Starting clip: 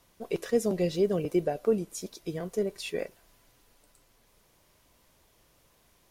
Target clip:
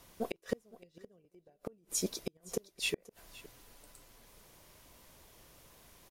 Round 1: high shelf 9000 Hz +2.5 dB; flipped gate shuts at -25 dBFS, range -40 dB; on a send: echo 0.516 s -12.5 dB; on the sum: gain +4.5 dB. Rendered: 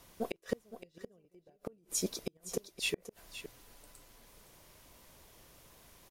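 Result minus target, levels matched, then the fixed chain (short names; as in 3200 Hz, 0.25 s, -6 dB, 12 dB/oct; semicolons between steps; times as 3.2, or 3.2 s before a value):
echo-to-direct +7 dB
high shelf 9000 Hz +2.5 dB; flipped gate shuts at -25 dBFS, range -40 dB; on a send: echo 0.516 s -19.5 dB; on the sum: gain +4.5 dB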